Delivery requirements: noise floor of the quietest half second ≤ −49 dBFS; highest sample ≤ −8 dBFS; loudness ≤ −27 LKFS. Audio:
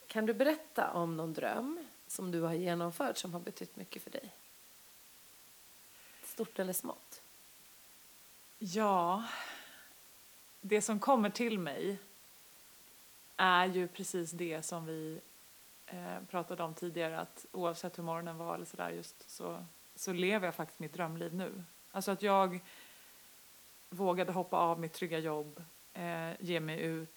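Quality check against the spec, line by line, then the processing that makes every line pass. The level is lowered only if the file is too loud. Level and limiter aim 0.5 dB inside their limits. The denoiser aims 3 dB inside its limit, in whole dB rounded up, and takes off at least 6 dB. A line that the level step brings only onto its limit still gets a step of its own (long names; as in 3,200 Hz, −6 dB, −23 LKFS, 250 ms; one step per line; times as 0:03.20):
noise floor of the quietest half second −59 dBFS: in spec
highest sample −14.0 dBFS: in spec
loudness −37.0 LKFS: in spec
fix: no processing needed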